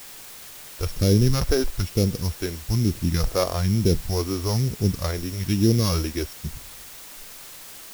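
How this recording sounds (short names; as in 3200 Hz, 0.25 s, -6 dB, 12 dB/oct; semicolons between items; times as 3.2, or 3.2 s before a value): a buzz of ramps at a fixed pitch in blocks of 8 samples; phasing stages 2, 1.1 Hz, lowest notch 130–1200 Hz; a quantiser's noise floor 8-bit, dither triangular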